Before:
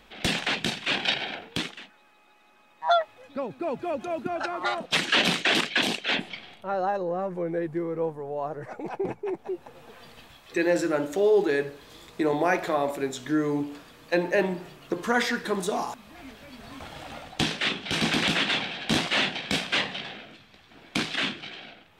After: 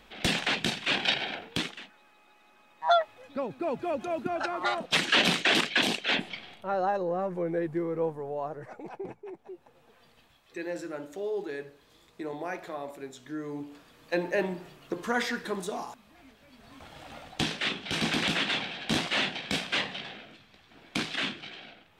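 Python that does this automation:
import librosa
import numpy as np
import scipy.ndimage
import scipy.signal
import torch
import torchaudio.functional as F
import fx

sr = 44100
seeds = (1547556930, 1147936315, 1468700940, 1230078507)

y = fx.gain(x, sr, db=fx.line((8.24, -1.0), (9.31, -12.0), (13.35, -12.0), (14.14, -4.5), (15.42, -4.5), (16.37, -11.5), (17.34, -3.5)))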